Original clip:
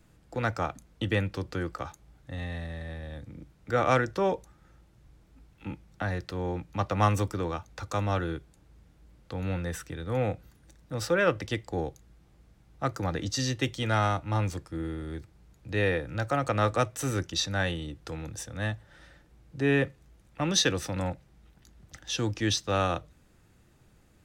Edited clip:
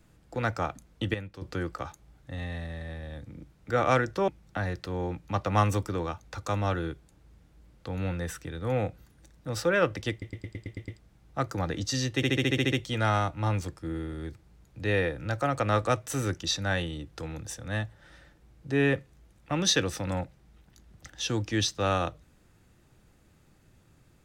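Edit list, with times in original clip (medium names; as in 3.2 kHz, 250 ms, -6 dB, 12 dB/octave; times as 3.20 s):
1.14–1.42 s: gain -10.5 dB
4.28–5.73 s: delete
11.56 s: stutter in place 0.11 s, 8 plays
13.61 s: stutter 0.07 s, 9 plays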